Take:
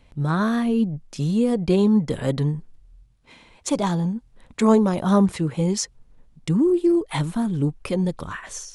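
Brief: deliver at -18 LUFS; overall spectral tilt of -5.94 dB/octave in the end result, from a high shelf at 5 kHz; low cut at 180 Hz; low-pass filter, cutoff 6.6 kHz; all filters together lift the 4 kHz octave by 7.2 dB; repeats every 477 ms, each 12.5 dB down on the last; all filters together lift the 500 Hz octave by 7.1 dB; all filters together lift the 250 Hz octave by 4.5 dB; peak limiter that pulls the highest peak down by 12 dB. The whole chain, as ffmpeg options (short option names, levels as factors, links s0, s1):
-af "highpass=180,lowpass=6600,equalizer=f=250:t=o:g=6,equalizer=f=500:t=o:g=7,equalizer=f=4000:t=o:g=8,highshelf=f=5000:g=4,alimiter=limit=0.282:level=0:latency=1,aecho=1:1:477|954|1431:0.237|0.0569|0.0137,volume=1.41"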